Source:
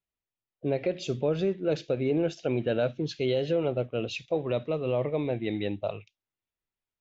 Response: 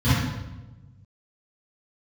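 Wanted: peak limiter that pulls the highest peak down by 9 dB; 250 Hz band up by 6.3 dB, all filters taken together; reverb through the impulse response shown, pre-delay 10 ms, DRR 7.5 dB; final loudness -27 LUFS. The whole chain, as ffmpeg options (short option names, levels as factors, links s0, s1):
-filter_complex "[0:a]equalizer=f=250:t=o:g=8.5,alimiter=limit=0.0794:level=0:latency=1,asplit=2[s0][s1];[1:a]atrim=start_sample=2205,adelay=10[s2];[s1][s2]afir=irnorm=-1:irlink=0,volume=0.0596[s3];[s0][s3]amix=inputs=2:normalize=0,volume=0.708"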